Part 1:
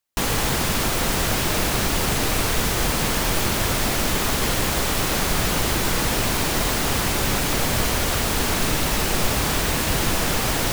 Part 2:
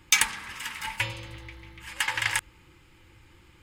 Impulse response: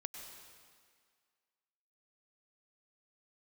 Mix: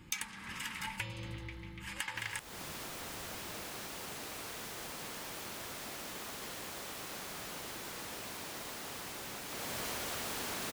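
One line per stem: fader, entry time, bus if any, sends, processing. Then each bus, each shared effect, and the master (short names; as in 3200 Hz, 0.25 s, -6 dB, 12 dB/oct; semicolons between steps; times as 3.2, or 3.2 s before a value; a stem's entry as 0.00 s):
9.47 s -23 dB -> 9.91 s -10 dB, 2.00 s, send -5 dB, HPF 300 Hz 6 dB/oct
-3.0 dB, 0.00 s, no send, bell 190 Hz +11.5 dB 1.1 oct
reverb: on, RT60 1.9 s, pre-delay 91 ms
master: compressor 5:1, threshold -37 dBFS, peak gain reduction 16.5 dB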